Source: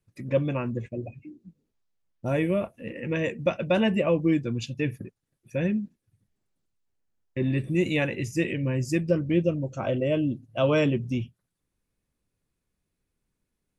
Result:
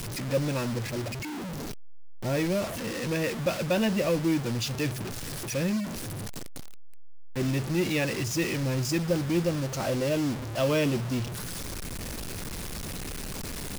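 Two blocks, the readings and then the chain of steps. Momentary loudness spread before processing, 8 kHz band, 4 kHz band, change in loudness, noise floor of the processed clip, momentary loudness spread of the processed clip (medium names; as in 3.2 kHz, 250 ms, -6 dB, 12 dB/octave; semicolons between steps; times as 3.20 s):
13 LU, +13.0 dB, +5.0 dB, -2.5 dB, -36 dBFS, 10 LU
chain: jump at every zero crossing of -25 dBFS; peaking EQ 5.1 kHz +7 dB 0.61 oct; word length cut 6-bit, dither none; trim -5 dB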